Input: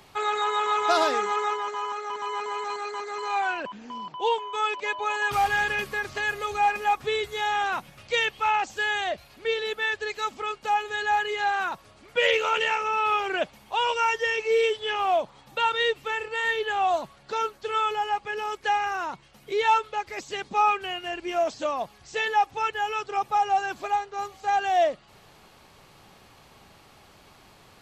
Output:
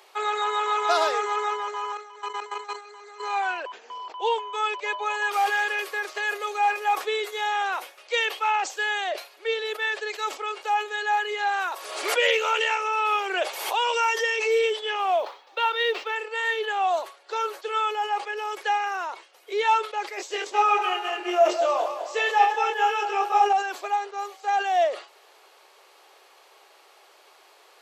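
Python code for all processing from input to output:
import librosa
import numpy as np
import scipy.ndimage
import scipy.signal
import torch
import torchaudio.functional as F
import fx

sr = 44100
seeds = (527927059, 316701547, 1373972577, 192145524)

y = fx.chain(x, sr, fx.high_shelf(hz=2300.0, db=3.5),
    fx.level_steps(step_db=15), at=(1.97, 3.2))
y = fx.chain(y, sr, fx.high_shelf(hz=5800.0, db=6.0),
    fx.pre_swell(db_per_s=52.0), at=(11.51, 14.59))
y = fx.chain(y, sr, fx.lowpass(hz=5600.0, slope=24),
    fx.quant_companded(bits=8), at=(15.19, 16.16))
y = fx.chain(y, sr, fx.reverse_delay_fb(ms=103, feedback_pct=65, wet_db=-7.0),
    fx.low_shelf(hz=480.0, db=5.5),
    fx.doubler(ms=22.0, db=-4.0), at=(20.17, 23.53))
y = scipy.signal.sosfilt(scipy.signal.butter(8, 370.0, 'highpass', fs=sr, output='sos'), y)
y = fx.sustainer(y, sr, db_per_s=150.0)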